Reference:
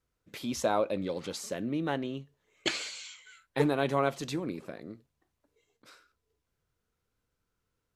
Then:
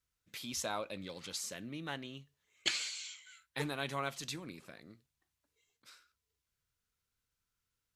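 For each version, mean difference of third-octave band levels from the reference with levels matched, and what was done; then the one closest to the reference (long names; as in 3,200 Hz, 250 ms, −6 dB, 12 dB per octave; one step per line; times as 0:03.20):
4.5 dB: guitar amp tone stack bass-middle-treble 5-5-5
level +6.5 dB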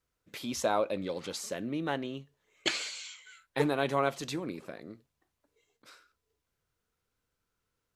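1.5 dB: low-shelf EQ 490 Hz −4.5 dB
level +1 dB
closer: second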